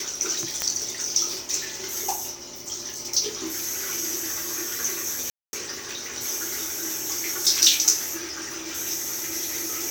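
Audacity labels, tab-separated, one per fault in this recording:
0.620000	0.620000	click −7 dBFS
5.300000	5.530000	drop-out 230 ms

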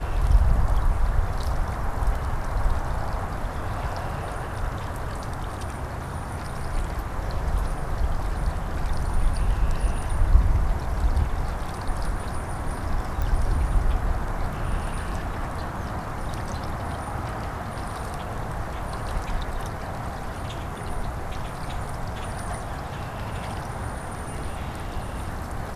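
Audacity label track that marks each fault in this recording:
13.220000	13.220000	click

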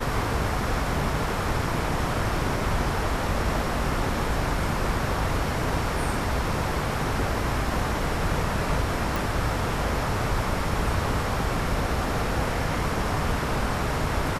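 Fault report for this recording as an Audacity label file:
9.160000	9.160000	click

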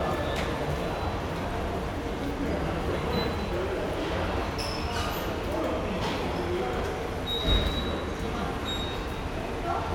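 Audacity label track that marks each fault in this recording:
3.280000	4.120000	clipping −25.5 dBFS
5.080000	6.690000	clipping −24 dBFS

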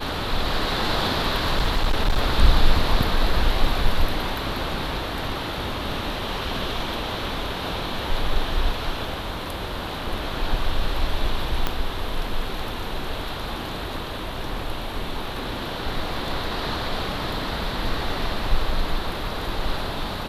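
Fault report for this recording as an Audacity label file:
1.340000	2.220000	clipping −15 dBFS
11.670000	11.670000	click −8 dBFS

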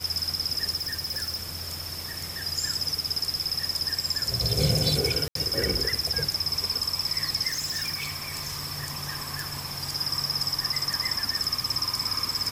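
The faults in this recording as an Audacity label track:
0.750000	2.310000	clipping −26.5 dBFS
5.280000	5.350000	drop-out 73 ms
7.470000	8.690000	clipping −26 dBFS
9.400000	9.400000	click

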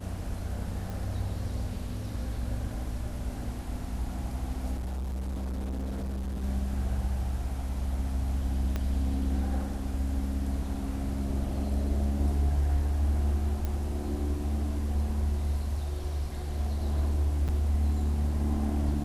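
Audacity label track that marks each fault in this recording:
0.900000	0.900000	click
4.750000	6.440000	clipping −30.5 dBFS
8.760000	8.760000	click −18 dBFS
13.650000	13.650000	click −19 dBFS
17.480000	17.490000	drop-out 6.8 ms

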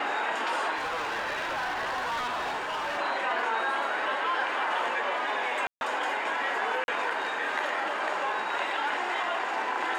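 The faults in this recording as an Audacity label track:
0.760000	2.990000	clipping −28 dBFS
5.670000	5.810000	drop-out 141 ms
6.840000	6.880000	drop-out 41 ms

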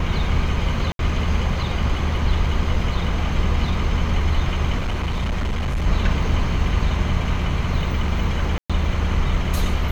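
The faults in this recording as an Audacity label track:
0.920000	0.990000	drop-out 72 ms
4.780000	5.870000	clipping −19 dBFS
8.580000	8.700000	drop-out 116 ms

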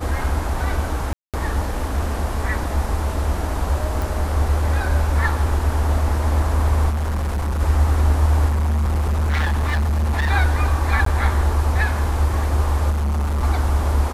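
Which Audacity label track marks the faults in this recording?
1.130000	1.340000	drop-out 207 ms
4.020000	4.020000	click
6.890000	7.610000	clipping −19 dBFS
8.480000	10.310000	clipping −16.5 dBFS
11.050000	11.060000	drop-out 13 ms
12.900000	13.440000	clipping −18 dBFS

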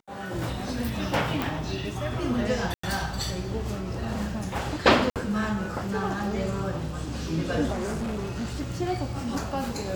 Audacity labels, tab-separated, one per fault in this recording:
1.420000	1.420000	click
2.740000	2.830000	drop-out 94 ms
5.100000	5.160000	drop-out 57 ms
7.720000	8.620000	clipping −27 dBFS

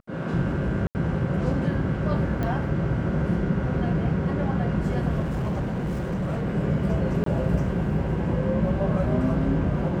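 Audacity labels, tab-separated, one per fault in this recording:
0.870000	0.950000	drop-out 79 ms
2.430000	2.430000	click −17 dBFS
5.190000	6.470000	clipping −23.5 dBFS
7.240000	7.260000	drop-out 23 ms

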